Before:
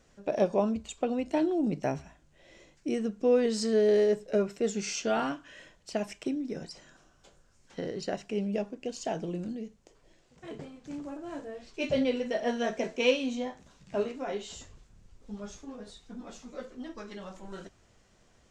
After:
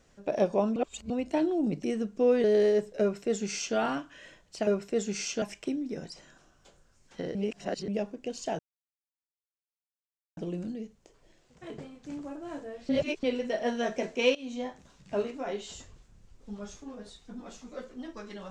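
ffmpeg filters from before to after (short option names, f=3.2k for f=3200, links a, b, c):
-filter_complex "[0:a]asplit=13[a][b][c][d][e][f][g][h][i][j][k][l][m];[a]atrim=end=0.762[n];[b]atrim=start=0.758:end=1.102,asetpts=PTS-STARTPTS,areverse[o];[c]atrim=start=1.098:end=1.842[p];[d]atrim=start=2.878:end=3.482[q];[e]atrim=start=3.778:end=6.012[r];[f]atrim=start=4.348:end=5.102[s];[g]atrim=start=6.008:end=7.942[t];[h]atrim=start=7.938:end=8.472,asetpts=PTS-STARTPTS,areverse[u];[i]atrim=start=8.468:end=9.18,asetpts=PTS-STARTPTS,afade=t=out:st=0.708:d=0.004:c=hsin,apad=pad_dur=1.78[v];[j]atrim=start=9.18:end=11.702,asetpts=PTS-STARTPTS,afade=t=in:d=0.004:c=hsin[w];[k]atrim=start=11.698:end=12.042,asetpts=PTS-STARTPTS,areverse[x];[l]atrim=start=12.038:end=13.16,asetpts=PTS-STARTPTS,afade=t=out:st=1.118:d=0.004:c=hsin:silence=0.125893[y];[m]atrim=start=13.16,asetpts=PTS-STARTPTS,afade=t=in:d=0.3:silence=0.125893[z];[n][o]acrossfade=d=0.004:c1=hsin:c2=hsin[aa];[aa][p]acrossfade=d=0.004:c1=hsin:c2=hsin[ab];[ab][q]acrossfade=d=0.004:c1=hsin:c2=hsin[ac];[ac][r]acrossfade=d=0.004:c1=hsin:c2=hsin[ad];[ad][s]acrossfade=d=0.004:c1=hsin:c2=hsin[ae];[ae][t]acrossfade=d=0.004:c1=hsin:c2=hsin[af];[af][u]acrossfade=d=0.004:c1=hsin:c2=hsin[ag];[v][w]concat=n=2:v=0:a=1[ah];[ag][ah]acrossfade=d=0.004:c1=hsin:c2=hsin[ai];[ai][x]acrossfade=d=0.004:c1=hsin:c2=hsin[aj];[y][z]concat=n=2:v=0:a=1[ak];[aj][ak]acrossfade=d=0.004:c1=hsin:c2=hsin"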